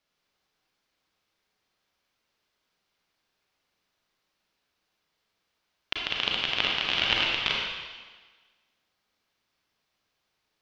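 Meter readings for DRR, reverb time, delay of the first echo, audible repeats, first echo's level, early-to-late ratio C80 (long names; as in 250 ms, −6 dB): −2.5 dB, 1.4 s, no echo audible, no echo audible, no echo audible, 2.0 dB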